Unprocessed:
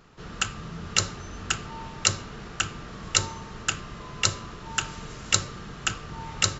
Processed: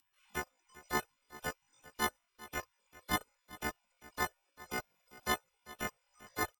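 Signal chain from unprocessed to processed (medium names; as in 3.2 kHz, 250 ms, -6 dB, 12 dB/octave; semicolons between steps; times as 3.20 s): partials quantised in pitch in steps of 3 st; spectral gate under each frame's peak -25 dB weak; reverb removal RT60 0.97 s; in parallel at -2.5 dB: compression, threshold -51 dBFS, peak gain reduction 19 dB; on the sum: pitch shift +12 st; hard clipper -22.5 dBFS, distortion -42 dB; on a send: delay 395 ms -18.5 dB; on the sum: trim +3.5 dB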